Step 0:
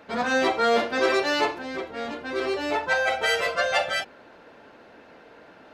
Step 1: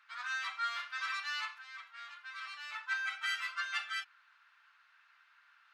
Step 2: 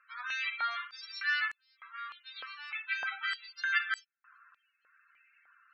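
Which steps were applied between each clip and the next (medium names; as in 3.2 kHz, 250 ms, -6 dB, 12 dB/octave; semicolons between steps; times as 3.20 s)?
elliptic high-pass 1.2 kHz, stop band 70 dB; tilt EQ -1.5 dB/octave; trim -8.5 dB
loudest bins only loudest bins 32; step-sequenced high-pass 3.3 Hz 510–7600 Hz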